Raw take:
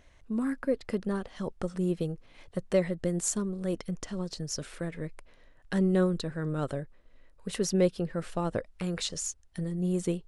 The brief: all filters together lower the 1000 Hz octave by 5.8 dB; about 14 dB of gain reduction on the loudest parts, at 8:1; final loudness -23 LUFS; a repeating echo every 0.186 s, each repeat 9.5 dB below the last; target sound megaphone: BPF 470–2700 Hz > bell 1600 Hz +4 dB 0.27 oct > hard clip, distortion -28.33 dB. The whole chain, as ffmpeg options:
-af "equalizer=f=1k:t=o:g=-8,acompressor=threshold=-36dB:ratio=8,highpass=470,lowpass=2.7k,equalizer=f=1.6k:t=o:w=0.27:g=4,aecho=1:1:186|372|558|744:0.335|0.111|0.0365|0.012,asoftclip=type=hard:threshold=-32dB,volume=26dB"

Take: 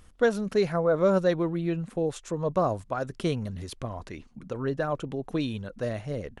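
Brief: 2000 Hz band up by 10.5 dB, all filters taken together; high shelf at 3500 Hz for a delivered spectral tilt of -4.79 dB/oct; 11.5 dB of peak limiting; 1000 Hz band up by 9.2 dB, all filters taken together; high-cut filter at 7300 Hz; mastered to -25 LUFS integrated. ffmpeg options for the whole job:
-af "lowpass=7.3k,equalizer=f=1k:t=o:g=9,equalizer=f=2k:t=o:g=9,highshelf=f=3.5k:g=5.5,volume=4.5dB,alimiter=limit=-13.5dB:level=0:latency=1"

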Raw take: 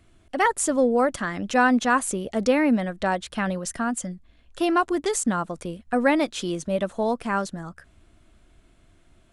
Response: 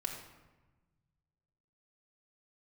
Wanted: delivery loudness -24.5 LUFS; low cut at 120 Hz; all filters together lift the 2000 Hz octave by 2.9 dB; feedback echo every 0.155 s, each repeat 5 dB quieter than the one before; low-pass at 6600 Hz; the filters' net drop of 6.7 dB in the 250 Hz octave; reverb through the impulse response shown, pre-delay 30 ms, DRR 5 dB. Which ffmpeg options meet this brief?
-filter_complex "[0:a]highpass=120,lowpass=6.6k,equalizer=f=250:t=o:g=-8,equalizer=f=2k:t=o:g=4,aecho=1:1:155|310|465|620|775|930|1085:0.562|0.315|0.176|0.0988|0.0553|0.031|0.0173,asplit=2[a][b];[1:a]atrim=start_sample=2205,adelay=30[c];[b][c]afir=irnorm=-1:irlink=0,volume=-6dB[d];[a][d]amix=inputs=2:normalize=0,volume=-2dB"

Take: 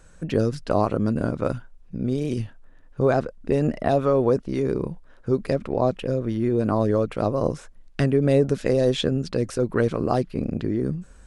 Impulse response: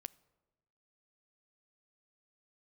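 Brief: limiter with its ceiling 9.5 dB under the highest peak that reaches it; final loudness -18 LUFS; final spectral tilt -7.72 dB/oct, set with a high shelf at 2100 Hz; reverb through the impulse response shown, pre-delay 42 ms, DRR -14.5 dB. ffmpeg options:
-filter_complex "[0:a]highshelf=f=2.1k:g=-7,alimiter=limit=-16dB:level=0:latency=1,asplit=2[a][b];[1:a]atrim=start_sample=2205,adelay=42[c];[b][c]afir=irnorm=-1:irlink=0,volume=19.5dB[d];[a][d]amix=inputs=2:normalize=0,volume=-5dB"

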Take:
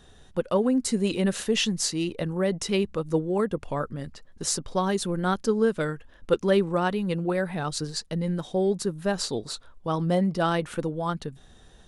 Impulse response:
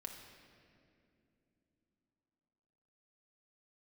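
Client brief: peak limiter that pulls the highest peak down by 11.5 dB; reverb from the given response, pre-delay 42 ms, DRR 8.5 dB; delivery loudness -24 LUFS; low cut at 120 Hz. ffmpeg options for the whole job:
-filter_complex "[0:a]highpass=120,alimiter=limit=-20dB:level=0:latency=1,asplit=2[a][b];[1:a]atrim=start_sample=2205,adelay=42[c];[b][c]afir=irnorm=-1:irlink=0,volume=-5dB[d];[a][d]amix=inputs=2:normalize=0,volume=5.5dB"

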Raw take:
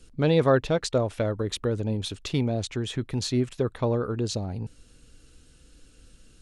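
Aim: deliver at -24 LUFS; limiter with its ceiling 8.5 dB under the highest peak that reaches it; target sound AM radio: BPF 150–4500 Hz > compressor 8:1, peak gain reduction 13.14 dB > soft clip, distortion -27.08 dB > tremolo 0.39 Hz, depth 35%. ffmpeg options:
-af "alimiter=limit=-18dB:level=0:latency=1,highpass=150,lowpass=4.5k,acompressor=threshold=-35dB:ratio=8,asoftclip=threshold=-23dB,tremolo=f=0.39:d=0.35,volume=18.5dB"

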